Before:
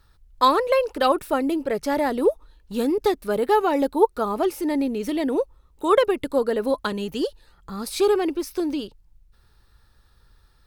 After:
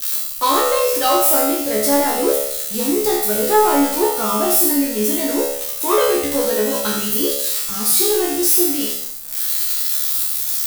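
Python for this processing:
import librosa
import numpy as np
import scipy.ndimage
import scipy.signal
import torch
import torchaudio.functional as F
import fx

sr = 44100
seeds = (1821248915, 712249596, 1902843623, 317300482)

p1 = x + 0.5 * 10.0 ** (-16.5 / 20.0) * np.diff(np.sign(x), prepend=np.sign(x[:1]))
p2 = fx.high_shelf(p1, sr, hz=4400.0, db=6.5)
p3 = np.clip(p2, -10.0 ** (-18.5 / 20.0), 10.0 ** (-18.5 / 20.0))
p4 = p2 + (p3 * 10.0 ** (-3.5 / 20.0))
p5 = fx.comb_fb(p4, sr, f0_hz=71.0, decay_s=0.73, harmonics='all', damping=0.0, mix_pct=100)
p6 = p5 + 10.0 ** (-8.0 / 20.0) * np.pad(p5, (int(83 * sr / 1000.0), 0))[:len(p5)]
p7 = fx.leveller(p6, sr, passes=1)
y = p7 * 10.0 ** (8.0 / 20.0)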